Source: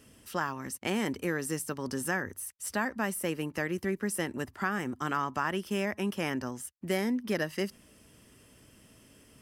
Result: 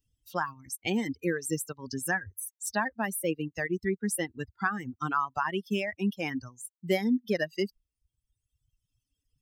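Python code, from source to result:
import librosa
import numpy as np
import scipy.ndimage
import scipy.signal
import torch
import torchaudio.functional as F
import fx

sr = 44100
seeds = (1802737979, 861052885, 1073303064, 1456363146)

y = fx.bin_expand(x, sr, power=2.0)
y = fx.dereverb_blind(y, sr, rt60_s=1.4)
y = F.gain(torch.from_numpy(y), 6.5).numpy()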